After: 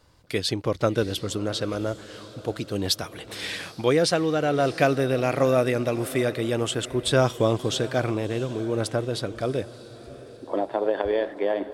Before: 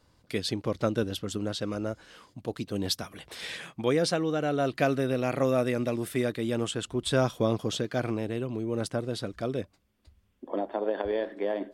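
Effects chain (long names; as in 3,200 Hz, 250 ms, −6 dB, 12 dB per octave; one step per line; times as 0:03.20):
parametric band 220 Hz −6 dB 0.61 octaves
feedback delay with all-pass diffusion 677 ms, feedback 45%, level −16 dB
level +5.5 dB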